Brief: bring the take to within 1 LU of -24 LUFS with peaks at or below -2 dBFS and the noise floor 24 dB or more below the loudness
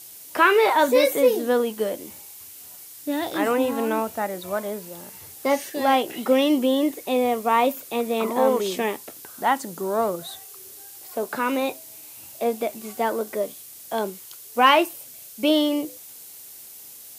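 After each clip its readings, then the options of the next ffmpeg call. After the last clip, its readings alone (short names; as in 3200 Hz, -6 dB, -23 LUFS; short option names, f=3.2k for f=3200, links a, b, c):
noise floor -43 dBFS; noise floor target -47 dBFS; loudness -23.0 LUFS; peak -4.0 dBFS; loudness target -24.0 LUFS
-> -af "afftdn=nr=6:nf=-43"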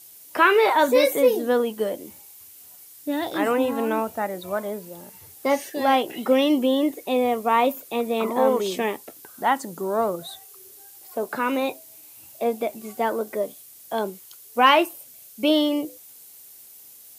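noise floor -47 dBFS; loudness -23.0 LUFS; peak -4.0 dBFS; loudness target -24.0 LUFS
-> -af "volume=-1dB"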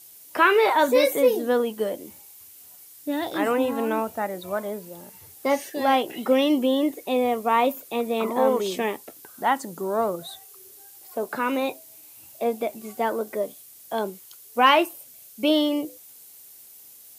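loudness -24.0 LUFS; peak -5.0 dBFS; noise floor -48 dBFS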